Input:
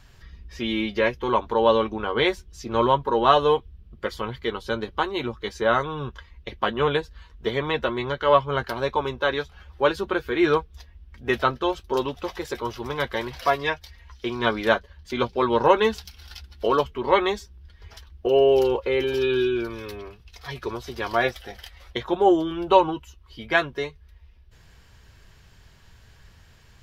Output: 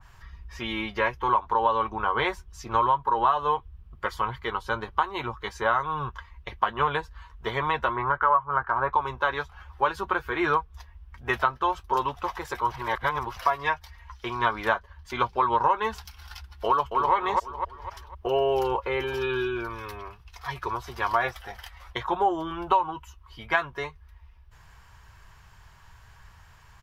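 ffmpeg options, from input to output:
ffmpeg -i in.wav -filter_complex "[0:a]asettb=1/sr,asplit=3[link_01][link_02][link_03];[link_01]atrim=end=7.964[link_04];[link_02]atrim=start=7.96:end=8.93,asetpts=PTS-STARTPTS,afade=type=in:duration=0.004:curve=qsin,afade=type=out:start_time=0.966:duration=0.004:curve=qsin,lowpass=frequency=1400:width_type=q:width=2.1[link_05];[link_03]atrim=start=8.926[link_06];[link_04][link_05]acrossfade=duration=0.004:curve1=hsin:curve2=qsin[link_07];[link_07][link_06]acrossfade=duration=0.004:curve1=qsin:curve2=hsin,asplit=2[link_08][link_09];[link_09]afade=type=in:start_time=16.66:duration=0.01,afade=type=out:start_time=17.14:duration=0.01,aecho=0:1:250|500|750|1000|1250:0.501187|0.200475|0.08019|0.032076|0.0128304[link_10];[link_08][link_10]amix=inputs=2:normalize=0,asplit=3[link_11][link_12][link_13];[link_11]atrim=end=12.722[link_14];[link_12]atrim=start=12.718:end=13.372,asetpts=PTS-STARTPTS,areverse[link_15];[link_13]atrim=start=13.368[link_16];[link_14][link_15]acrossfade=duration=0.004:curve1=hsin:curve2=hsin[link_17];[link_17][link_16]acrossfade=duration=0.004:curve1=hsin:curve2=hsin,equalizer=frequency=250:width_type=o:width=1:gain=-9,equalizer=frequency=500:width_type=o:width=1:gain=-6,equalizer=frequency=1000:width_type=o:width=1:gain=10,equalizer=frequency=4000:width_type=o:width=1:gain=-5,acompressor=threshold=-19dB:ratio=6,adynamicequalizer=threshold=0.0126:dfrequency=2000:dqfactor=0.7:tfrequency=2000:tqfactor=0.7:attack=5:release=100:ratio=0.375:range=1.5:mode=cutabove:tftype=highshelf" out.wav

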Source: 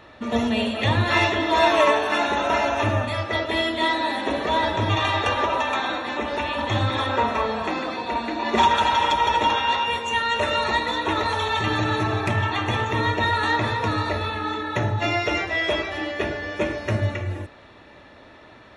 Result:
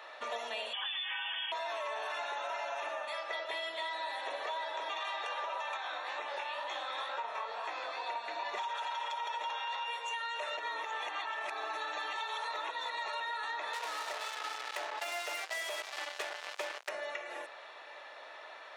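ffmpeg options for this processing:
ffmpeg -i in.wav -filter_complex "[0:a]asettb=1/sr,asplit=3[link_01][link_02][link_03];[link_01]atrim=end=0.734[link_04];[link_02]atrim=start=0.73:end=1.52,asetpts=PTS-STARTPTS,afade=type=in:duration=0.004:curve=qsin,afade=type=out:start_time=0.786:duration=0.004:curve=qsin,lowpass=frequency=3100:width_type=q:width=0.5098,lowpass=frequency=3100:width_type=q:width=0.6013,lowpass=frequency=3100:width_type=q:width=0.9,lowpass=frequency=3100:width_type=q:width=2.563,afreqshift=-3600[link_05];[link_03]atrim=start=1.516[link_06];[link_04][link_05]acrossfade=duration=0.004:curve1=hsin:curve2=qsin[link_07];[link_07][link_06]acrossfade=duration=0.004:curve1=qsin:curve2=hsin,asettb=1/sr,asplit=3[link_08][link_09][link_10];[link_08]atrim=end=5.774[link_11];[link_09]atrim=start=5.77:end=8.02,asetpts=PTS-STARTPTS,afade=type=in:duration=0.004:curve=qsin,afade=type=out:start_time=2.246:duration=0.004:curve=qsin,flanger=delay=16:depth=7.7:speed=2.1[link_12];[link_10]atrim=start=8.016[link_13];[link_11][link_12]acrossfade=duration=0.004:curve1=hsin:curve2=qsin[link_14];[link_14][link_13]acrossfade=duration=0.004:curve1=qsin:curve2=hsin,asettb=1/sr,asplit=3[link_15][link_16][link_17];[link_15]atrim=end=13.734[link_18];[link_16]atrim=start=13.73:end=16.89,asetpts=PTS-STARTPTS,afade=type=in:duration=0.004:curve=qsin,afade=type=out:start_time=3.156:duration=0.004:curve=qsin,acrusher=bits=3:mix=0:aa=0.5[link_19];[link_17]atrim=start=16.886[link_20];[link_18][link_19]acrossfade=duration=0.004:curve1=hsin:curve2=qsin[link_21];[link_21][link_20]acrossfade=duration=0.004:curve1=qsin:curve2=hsin,asplit=3[link_22][link_23][link_24];[link_22]atrim=end=10.572[link_25];[link_23]atrim=start=10.568:end=13.202,asetpts=PTS-STARTPTS,areverse[link_26];[link_24]atrim=start=13.198[link_27];[link_25][link_26]acrossfade=duration=0.004:curve1=hsin:curve2=hsin[link_28];[link_28][link_27]acrossfade=duration=0.004:curve1=hsin:curve2=hsin,highpass=frequency=570:width=0.5412,highpass=frequency=570:width=1.3066,alimiter=limit=-15.5dB:level=0:latency=1:release=35,acompressor=threshold=-37dB:ratio=5" out.wav

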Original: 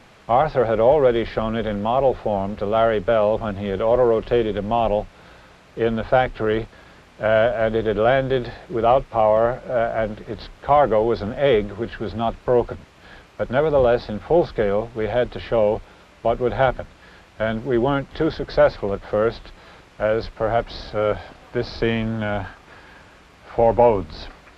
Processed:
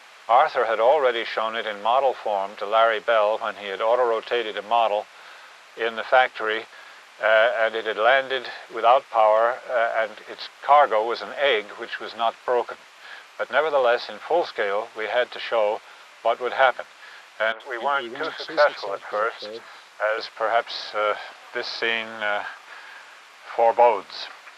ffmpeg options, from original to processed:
ffmpeg -i in.wav -filter_complex "[0:a]asettb=1/sr,asplit=3[link_01][link_02][link_03];[link_01]atrim=end=17.524[link_04];[link_02]atrim=start=17.52:end=20.18,asetpts=PTS-STARTPTS,afade=type=in:duration=0.004:curve=qsin,afade=type=out:start_time=2.656:duration=0.004:curve=qsin,acrossover=split=380|2700[link_05][link_06][link_07];[link_07]adelay=80[link_08];[link_05]adelay=290[link_09];[link_09][link_06][link_08]amix=inputs=3:normalize=0,atrim=end_sample=117306[link_10];[link_03]atrim=start=20.176[link_11];[link_04][link_10]acrossfade=duration=0.004:curve1=hsin:curve2=qsin[link_12];[link_12][link_11]acrossfade=duration=0.004:curve1=qsin:curve2=hsin,highpass=900,volume=5.5dB" out.wav

